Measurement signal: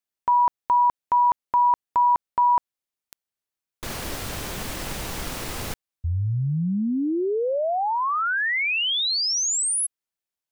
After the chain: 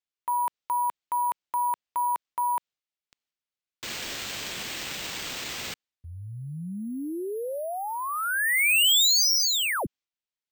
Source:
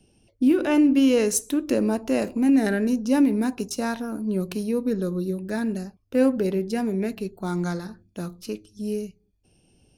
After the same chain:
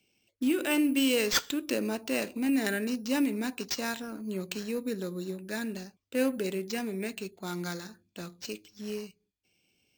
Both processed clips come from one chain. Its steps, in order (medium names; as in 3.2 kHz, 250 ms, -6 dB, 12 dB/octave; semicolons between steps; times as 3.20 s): gate with hold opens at -48 dBFS, closes at -56 dBFS, hold 96 ms, range -6 dB; frequency weighting D; careless resampling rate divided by 4×, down none, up hold; trim -7.5 dB